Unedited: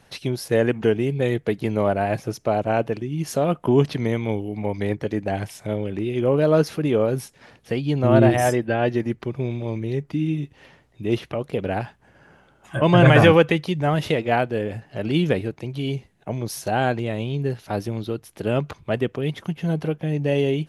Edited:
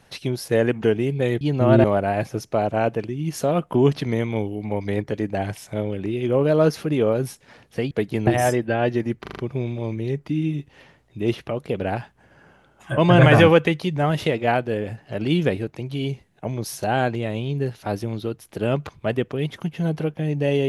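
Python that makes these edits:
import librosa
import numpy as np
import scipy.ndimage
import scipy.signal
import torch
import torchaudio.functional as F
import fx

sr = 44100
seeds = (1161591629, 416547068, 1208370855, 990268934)

y = fx.edit(x, sr, fx.swap(start_s=1.41, length_s=0.36, other_s=7.84, other_length_s=0.43),
    fx.stutter(start_s=9.22, slice_s=0.04, count=5), tone=tone)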